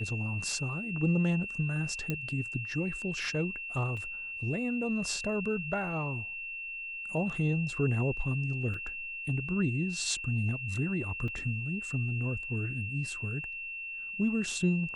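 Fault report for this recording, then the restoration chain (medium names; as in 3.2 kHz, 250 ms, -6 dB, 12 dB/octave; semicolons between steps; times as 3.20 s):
whine 2.7 kHz -37 dBFS
2.10 s: pop -18 dBFS
3.97 s: dropout 2.2 ms
8.74 s: dropout 2.9 ms
11.28 s: dropout 3.5 ms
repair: de-click; band-stop 2.7 kHz, Q 30; interpolate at 3.97 s, 2.2 ms; interpolate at 8.74 s, 2.9 ms; interpolate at 11.28 s, 3.5 ms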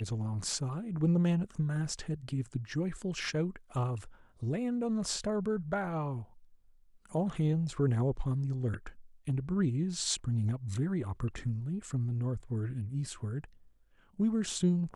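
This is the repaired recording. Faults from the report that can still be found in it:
nothing left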